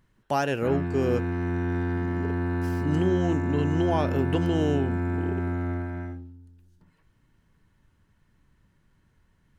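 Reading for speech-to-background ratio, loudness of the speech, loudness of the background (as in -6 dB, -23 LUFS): 1.0 dB, -28.0 LUFS, -29.0 LUFS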